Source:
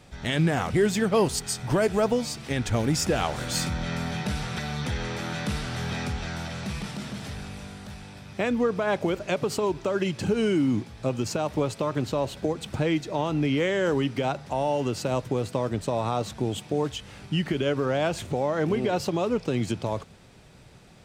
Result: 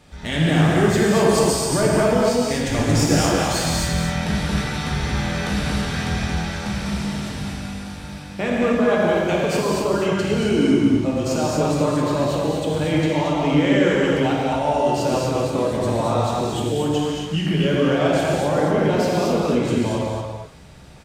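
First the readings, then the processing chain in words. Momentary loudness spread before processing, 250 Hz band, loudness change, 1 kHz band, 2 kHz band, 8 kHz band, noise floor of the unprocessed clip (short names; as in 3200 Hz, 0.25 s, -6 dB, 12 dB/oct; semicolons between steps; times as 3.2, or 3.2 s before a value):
9 LU, +8.0 dB, +7.0 dB, +7.0 dB, +7.0 dB, +7.0 dB, -50 dBFS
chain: echo 0.227 s -5.5 dB; non-linear reverb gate 0.3 s flat, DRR -4.5 dB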